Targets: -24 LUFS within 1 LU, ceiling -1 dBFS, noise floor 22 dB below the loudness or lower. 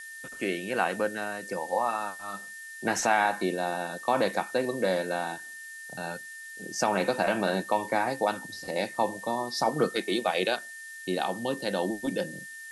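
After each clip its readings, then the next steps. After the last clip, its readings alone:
steady tone 1800 Hz; tone level -41 dBFS; noise floor -43 dBFS; noise floor target -52 dBFS; loudness -29.5 LUFS; peak -11.0 dBFS; loudness target -24.0 LUFS
-> notch 1800 Hz, Q 30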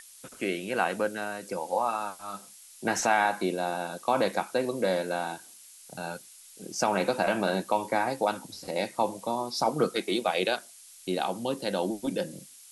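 steady tone none; noise floor -51 dBFS; noise floor target -52 dBFS
-> denoiser 6 dB, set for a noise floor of -51 dBFS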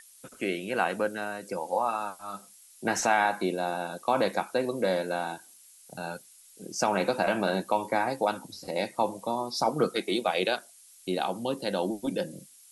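noise floor -55 dBFS; loudness -29.5 LUFS; peak -11.0 dBFS; loudness target -24.0 LUFS
-> gain +5.5 dB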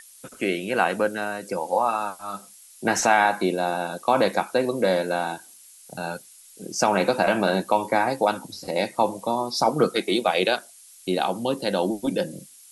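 loudness -24.0 LUFS; peak -5.5 dBFS; noise floor -50 dBFS

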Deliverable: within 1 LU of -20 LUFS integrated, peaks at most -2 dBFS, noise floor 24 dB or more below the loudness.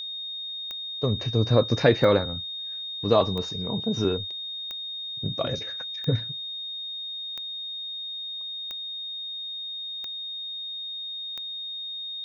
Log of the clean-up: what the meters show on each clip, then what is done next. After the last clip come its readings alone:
clicks 9; steady tone 3700 Hz; tone level -32 dBFS; loudness -28.0 LUFS; peak -5.0 dBFS; loudness target -20.0 LUFS
-> de-click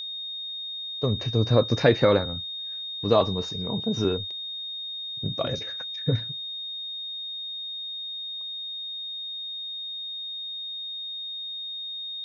clicks 0; steady tone 3700 Hz; tone level -32 dBFS
-> notch 3700 Hz, Q 30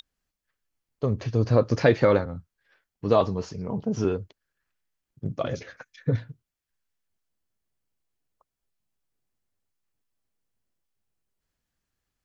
steady tone none; loudness -25.5 LUFS; peak -5.0 dBFS; loudness target -20.0 LUFS
-> gain +5.5 dB; limiter -2 dBFS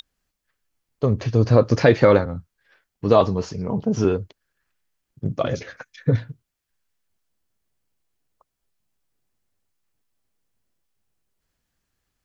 loudness -20.5 LUFS; peak -2.0 dBFS; noise floor -80 dBFS

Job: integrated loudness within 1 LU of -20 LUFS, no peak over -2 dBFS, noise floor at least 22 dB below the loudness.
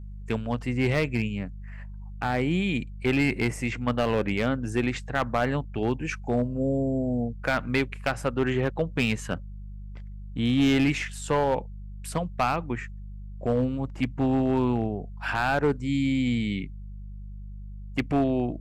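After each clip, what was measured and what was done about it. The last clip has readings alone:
clipped 0.9%; flat tops at -16.5 dBFS; hum 50 Hz; harmonics up to 200 Hz; hum level -36 dBFS; loudness -27.0 LUFS; peak -16.5 dBFS; loudness target -20.0 LUFS
-> clip repair -16.5 dBFS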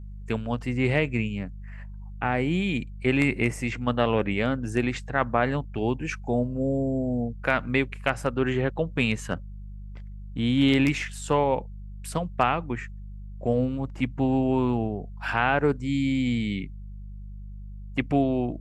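clipped 0.0%; hum 50 Hz; harmonics up to 200 Hz; hum level -36 dBFS
-> de-hum 50 Hz, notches 4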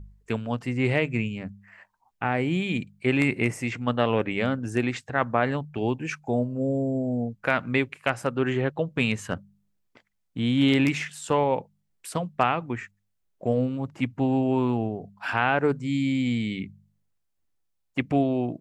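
hum none; loudness -26.5 LUFS; peak -7.5 dBFS; loudness target -20.0 LUFS
-> gain +6.5 dB; limiter -2 dBFS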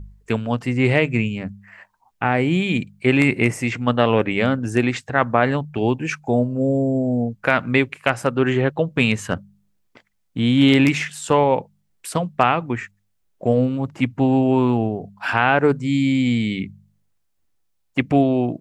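loudness -20.0 LUFS; peak -2.0 dBFS; noise floor -68 dBFS

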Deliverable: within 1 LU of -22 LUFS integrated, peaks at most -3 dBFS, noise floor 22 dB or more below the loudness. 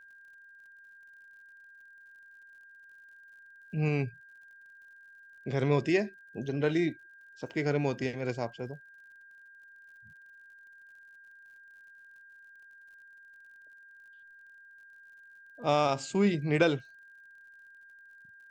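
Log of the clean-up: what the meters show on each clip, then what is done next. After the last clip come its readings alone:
ticks 43/s; steady tone 1600 Hz; tone level -52 dBFS; loudness -30.5 LUFS; peak -12.0 dBFS; loudness target -22.0 LUFS
-> de-click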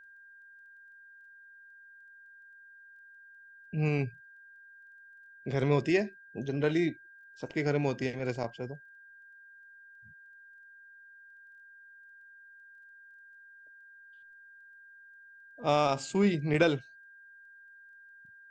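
ticks 0/s; steady tone 1600 Hz; tone level -52 dBFS
-> notch 1600 Hz, Q 30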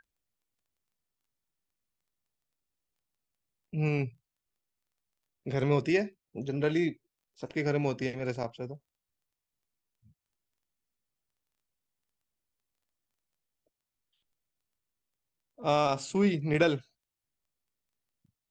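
steady tone none; loudness -30.5 LUFS; peak -12.5 dBFS; loudness target -22.0 LUFS
-> gain +8.5 dB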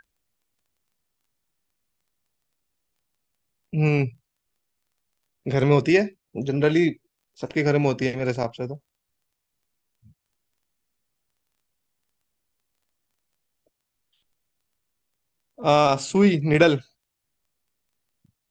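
loudness -22.0 LUFS; peak -4.0 dBFS; noise floor -81 dBFS

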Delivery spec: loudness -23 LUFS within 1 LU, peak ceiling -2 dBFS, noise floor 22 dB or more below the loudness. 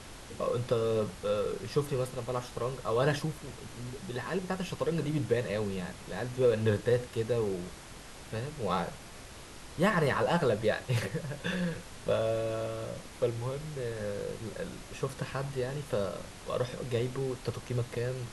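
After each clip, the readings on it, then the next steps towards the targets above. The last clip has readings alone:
noise floor -48 dBFS; noise floor target -55 dBFS; loudness -33.0 LUFS; peak -15.0 dBFS; loudness target -23.0 LUFS
-> noise print and reduce 7 dB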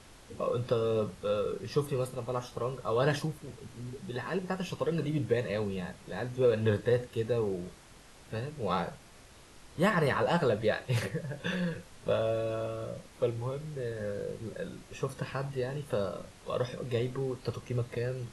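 noise floor -54 dBFS; noise floor target -55 dBFS
-> noise print and reduce 6 dB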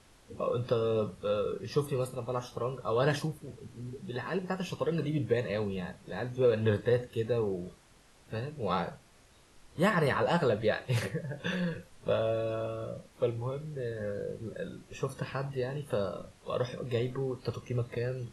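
noise floor -60 dBFS; loudness -33.0 LUFS; peak -15.0 dBFS; loudness target -23.0 LUFS
-> gain +10 dB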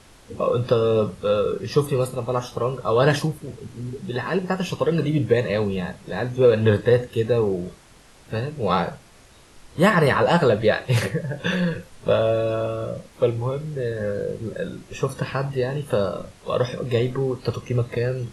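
loudness -23.0 LUFS; peak -5.0 dBFS; noise floor -50 dBFS

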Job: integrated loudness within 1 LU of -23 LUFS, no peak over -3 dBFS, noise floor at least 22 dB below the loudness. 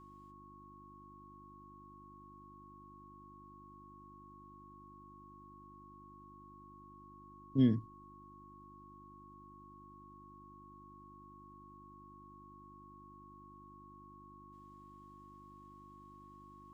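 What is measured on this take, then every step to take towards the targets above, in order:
hum 50 Hz; harmonics up to 350 Hz; hum level -58 dBFS; steady tone 1100 Hz; tone level -56 dBFS; loudness -33.0 LUFS; peak -18.0 dBFS; loudness target -23.0 LUFS
-> de-hum 50 Hz, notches 7; notch 1100 Hz, Q 30; gain +10 dB

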